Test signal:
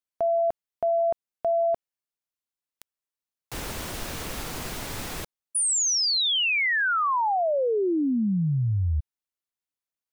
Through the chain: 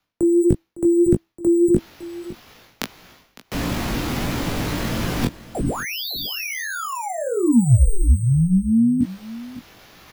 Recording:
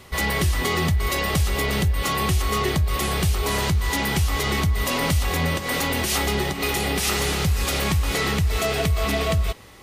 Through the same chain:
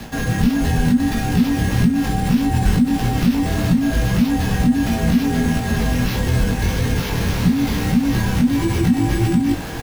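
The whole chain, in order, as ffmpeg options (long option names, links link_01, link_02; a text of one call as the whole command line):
ffmpeg -i in.wav -filter_complex "[0:a]equalizer=frequency=410:width=0.38:gain=8,acrusher=samples=5:mix=1:aa=0.000001,areverse,acompressor=mode=upward:threshold=-23dB:ratio=2.5:attack=96:release=204:knee=2.83:detection=peak,areverse,flanger=delay=19:depth=3.7:speed=1.6,asoftclip=type=hard:threshold=-6.5dB,afreqshift=-330,acrossover=split=330[link_01][link_02];[link_02]acompressor=threshold=-33dB:ratio=10:attack=7.3:release=33:knee=2.83:detection=peak[link_03];[link_01][link_03]amix=inputs=2:normalize=0,asplit=2[link_04][link_05];[link_05]adelay=17,volume=-10dB[link_06];[link_04][link_06]amix=inputs=2:normalize=0,asplit=2[link_07][link_08];[link_08]aecho=0:1:557:0.141[link_09];[link_07][link_09]amix=inputs=2:normalize=0,volume=5dB" out.wav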